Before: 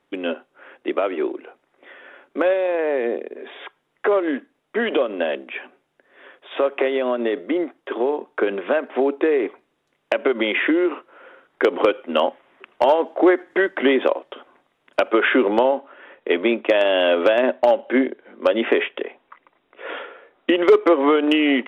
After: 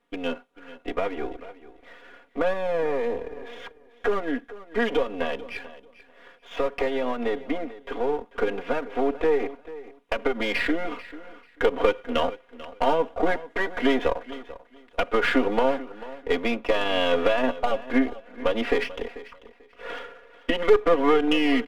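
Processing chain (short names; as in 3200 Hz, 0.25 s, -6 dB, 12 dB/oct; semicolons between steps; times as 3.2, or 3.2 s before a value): half-wave gain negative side -7 dB; comb 4.2 ms, depth 98%; feedback echo 0.441 s, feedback 20%, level -17 dB; gain -5 dB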